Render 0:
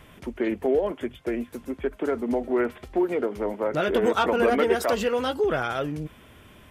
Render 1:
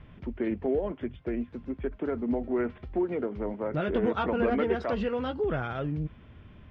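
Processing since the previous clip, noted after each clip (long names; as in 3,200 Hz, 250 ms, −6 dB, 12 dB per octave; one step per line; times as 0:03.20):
low-pass filter 5,100 Hz 24 dB per octave
bass and treble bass +11 dB, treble −11 dB
level −7 dB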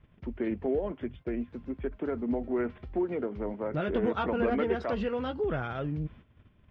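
noise gate −47 dBFS, range −12 dB
level −1.5 dB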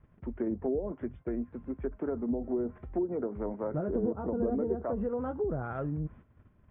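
treble cut that deepens with the level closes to 510 Hz, closed at −25.5 dBFS
Chebyshev low-pass filter 1,400 Hz, order 2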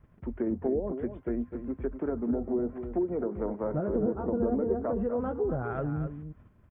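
single-tap delay 253 ms −9.5 dB
level +2 dB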